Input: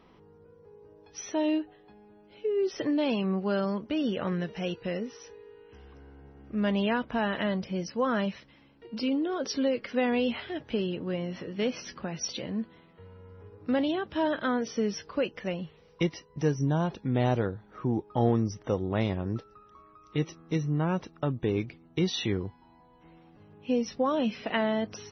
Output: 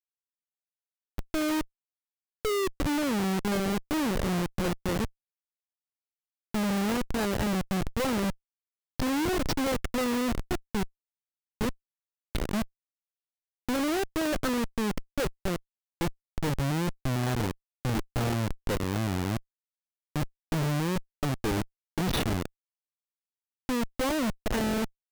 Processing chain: 10.55–12.33 tube stage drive 24 dB, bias 0.6; Schmitt trigger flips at -29.5 dBFS; gain +4 dB

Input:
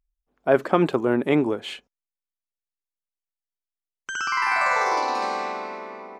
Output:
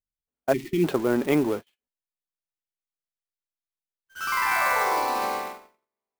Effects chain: zero-crossing step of -31.5 dBFS; gate -25 dBFS, range -56 dB; spectral delete 0.53–0.84, 390–1800 Hz; clock jitter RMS 0.022 ms; gain -2.5 dB

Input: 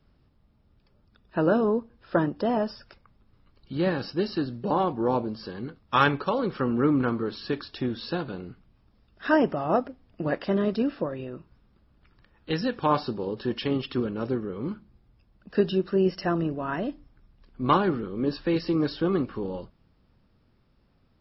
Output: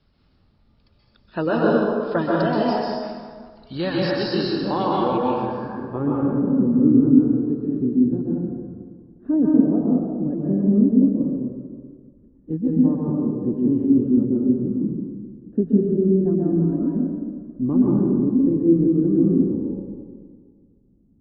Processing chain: low-pass sweep 4400 Hz -> 270 Hz, 5–6.13; reverb removal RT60 0.93 s; plate-style reverb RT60 1.8 s, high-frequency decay 0.65×, pre-delay 0.115 s, DRR -5 dB

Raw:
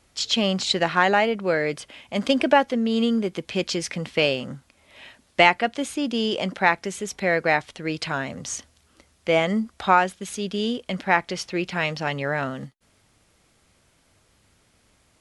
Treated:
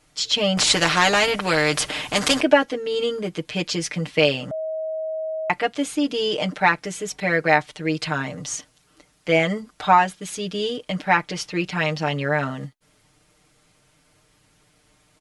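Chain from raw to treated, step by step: comb 6.6 ms, depth 99%; 0.57–2.41 spectral compressor 2:1; 4.51–5.5 bleep 635 Hz -23.5 dBFS; gain -1 dB

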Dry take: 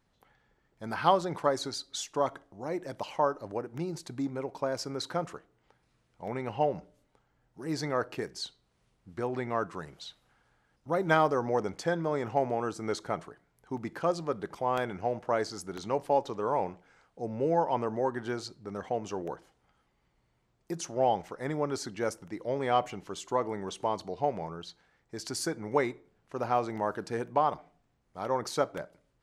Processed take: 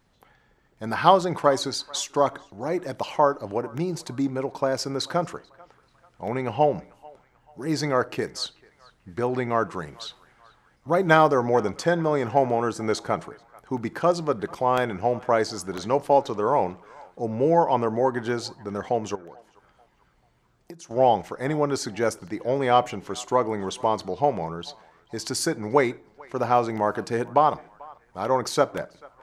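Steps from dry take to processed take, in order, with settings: 19.15–20.91 compressor 8:1, threshold -48 dBFS, peak gain reduction 17.5 dB; narrowing echo 0.439 s, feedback 51%, band-pass 1400 Hz, level -22 dB; gain +7.5 dB

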